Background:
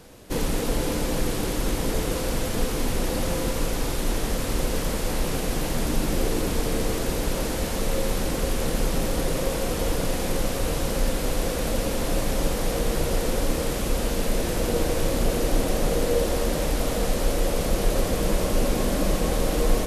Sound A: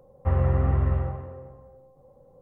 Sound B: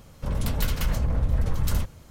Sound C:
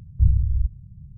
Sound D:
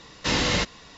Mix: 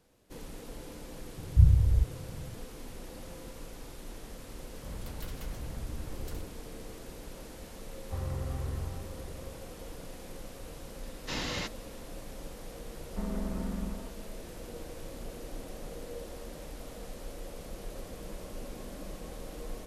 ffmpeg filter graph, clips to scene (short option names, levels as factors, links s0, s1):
-filter_complex "[1:a]asplit=2[s0][s1];[0:a]volume=0.106[s2];[3:a]equalizer=f=180:t=o:w=2.7:g=8[s3];[s0]aecho=1:1:700:0.266[s4];[s1]aeval=exprs='val(0)*sin(2*PI*120*n/s)':c=same[s5];[s3]atrim=end=1.17,asetpts=PTS-STARTPTS,volume=0.473,afade=t=in:d=0.004:c=hsin,afade=t=out:st=1.166:d=0.004:c=hsin,adelay=1370[s6];[2:a]atrim=end=2.1,asetpts=PTS-STARTPTS,volume=0.15,afade=t=in:d=0.004:c=hsin,afade=t=out:st=2.096:d=0.004:c=hsin,adelay=4600[s7];[s4]atrim=end=2.41,asetpts=PTS-STARTPTS,volume=0.211,afade=t=in:d=0.004:c=hsin,afade=t=out:st=2.406:d=0.004:c=hsin,adelay=346626S[s8];[4:a]atrim=end=0.97,asetpts=PTS-STARTPTS,volume=0.251,afade=t=in:d=0.004:c=hsin,afade=t=out:st=0.966:d=0.004:c=hsin,adelay=11030[s9];[s5]atrim=end=2.41,asetpts=PTS-STARTPTS,volume=0.316,afade=t=in:d=0.004:c=hsin,afade=t=out:st=2.406:d=0.004:c=hsin,adelay=12910[s10];[s2][s6][s7][s8][s9][s10]amix=inputs=6:normalize=0"